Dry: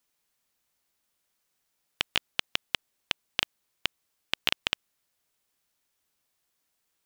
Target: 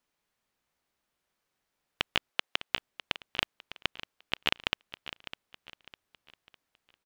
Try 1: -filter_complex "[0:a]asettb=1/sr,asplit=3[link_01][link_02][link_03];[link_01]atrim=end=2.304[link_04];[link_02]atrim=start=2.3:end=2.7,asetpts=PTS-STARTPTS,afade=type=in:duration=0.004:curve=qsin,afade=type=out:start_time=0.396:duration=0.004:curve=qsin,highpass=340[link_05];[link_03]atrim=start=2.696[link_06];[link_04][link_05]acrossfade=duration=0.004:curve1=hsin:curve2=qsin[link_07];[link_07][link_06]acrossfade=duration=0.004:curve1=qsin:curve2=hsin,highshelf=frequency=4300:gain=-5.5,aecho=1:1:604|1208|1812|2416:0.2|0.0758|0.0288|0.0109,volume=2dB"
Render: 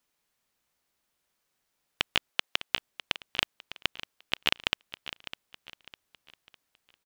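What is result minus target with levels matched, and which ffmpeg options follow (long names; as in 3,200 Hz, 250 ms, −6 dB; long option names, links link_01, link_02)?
8,000 Hz band +3.0 dB
-filter_complex "[0:a]asettb=1/sr,asplit=3[link_01][link_02][link_03];[link_01]atrim=end=2.304[link_04];[link_02]atrim=start=2.3:end=2.7,asetpts=PTS-STARTPTS,afade=type=in:duration=0.004:curve=qsin,afade=type=out:start_time=0.396:duration=0.004:curve=qsin,highpass=340[link_05];[link_03]atrim=start=2.696[link_06];[link_04][link_05]acrossfade=duration=0.004:curve1=hsin:curve2=qsin[link_07];[link_07][link_06]acrossfade=duration=0.004:curve1=qsin:curve2=hsin,highshelf=frequency=4300:gain=-13,aecho=1:1:604|1208|1812|2416:0.2|0.0758|0.0288|0.0109,volume=2dB"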